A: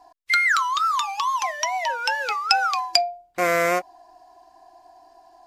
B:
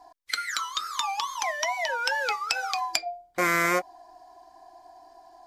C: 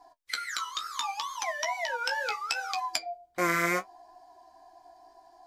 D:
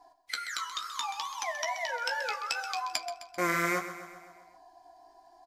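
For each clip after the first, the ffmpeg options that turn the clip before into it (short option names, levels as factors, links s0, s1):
-af "bandreject=f=2700:w=9.5,afftfilt=real='re*lt(hypot(re,im),0.562)':imag='im*lt(hypot(re,im),0.562)':win_size=1024:overlap=0.75"
-af "flanger=delay=9.7:depth=8.8:regen=34:speed=0.7:shape=triangular"
-af "aecho=1:1:130|260|390|520|650|780:0.251|0.143|0.0816|0.0465|0.0265|0.0151,volume=0.794"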